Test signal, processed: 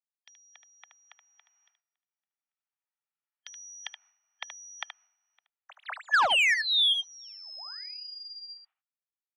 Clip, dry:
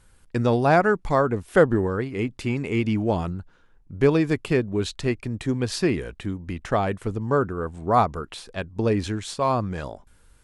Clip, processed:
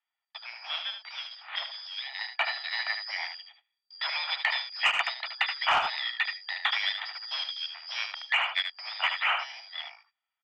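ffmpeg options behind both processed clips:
-filter_complex "[0:a]afftfilt=real='real(if(lt(b,272),68*(eq(floor(b/68),0)*3+eq(floor(b/68),1)*2+eq(floor(b/68),2)*1+eq(floor(b/68),3)*0)+mod(b,68),b),0)':imag='imag(if(lt(b,272),68*(eq(floor(b/68),0)*3+eq(floor(b/68),1)*2+eq(floor(b/68),2)*1+eq(floor(b/68),3)*0)+mod(b,68),b),0)':win_size=2048:overlap=0.75,agate=range=0.0447:threshold=0.00708:ratio=16:detection=peak,highshelf=f=2300:g=-7,aecho=1:1:1.9:0.32,asplit=2[s0][s1];[s1]highpass=f=720:p=1,volume=11.2,asoftclip=type=tanh:threshold=0.355[s2];[s0][s2]amix=inputs=2:normalize=0,lowpass=f=2100:p=1,volume=0.501,dynaudnorm=f=460:g=9:m=3.98,highpass=f=380:t=q:w=0.5412,highpass=f=380:t=q:w=1.307,lowpass=f=2900:t=q:w=0.5176,lowpass=f=2900:t=q:w=0.7071,lowpass=f=2900:t=q:w=1.932,afreqshift=270,asoftclip=type=tanh:threshold=0.376,aecho=1:1:75:0.398,acompressor=threshold=0.0891:ratio=12"

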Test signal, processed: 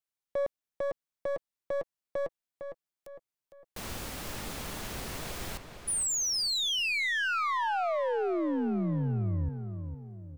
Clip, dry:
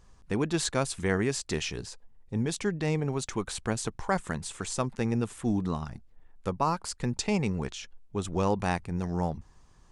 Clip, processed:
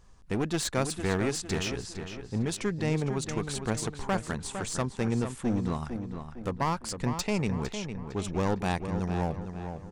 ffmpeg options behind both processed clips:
-filter_complex "[0:a]aeval=exprs='clip(val(0),-1,0.0376)':c=same,asplit=2[s0][s1];[s1]adelay=456,lowpass=f=3700:p=1,volume=0.398,asplit=2[s2][s3];[s3]adelay=456,lowpass=f=3700:p=1,volume=0.45,asplit=2[s4][s5];[s5]adelay=456,lowpass=f=3700:p=1,volume=0.45,asplit=2[s6][s7];[s7]adelay=456,lowpass=f=3700:p=1,volume=0.45,asplit=2[s8][s9];[s9]adelay=456,lowpass=f=3700:p=1,volume=0.45[s10];[s2][s4][s6][s8][s10]amix=inputs=5:normalize=0[s11];[s0][s11]amix=inputs=2:normalize=0"

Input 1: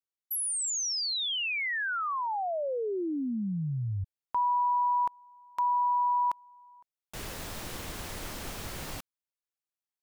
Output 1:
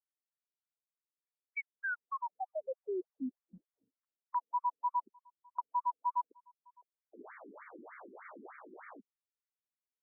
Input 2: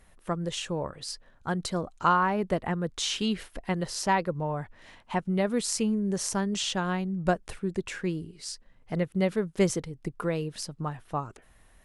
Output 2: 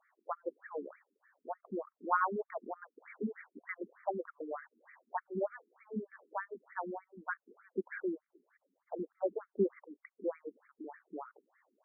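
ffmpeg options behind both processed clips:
-af "afftfilt=real='re*between(b*sr/1024,290*pow(1700/290,0.5+0.5*sin(2*PI*3.3*pts/sr))/1.41,290*pow(1700/290,0.5+0.5*sin(2*PI*3.3*pts/sr))*1.41)':imag='im*between(b*sr/1024,290*pow(1700/290,0.5+0.5*sin(2*PI*3.3*pts/sr))/1.41,290*pow(1700/290,0.5+0.5*sin(2*PI*3.3*pts/sr))*1.41)':win_size=1024:overlap=0.75,volume=0.708"

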